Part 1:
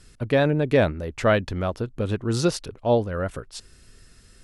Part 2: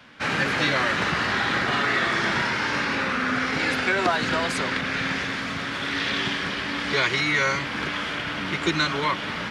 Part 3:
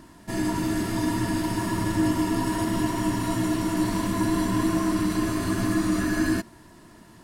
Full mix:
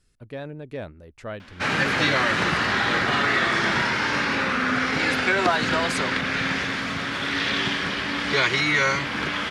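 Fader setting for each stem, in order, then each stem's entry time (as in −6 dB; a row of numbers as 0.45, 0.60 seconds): −15.0 dB, +1.5 dB, muted; 0.00 s, 1.40 s, muted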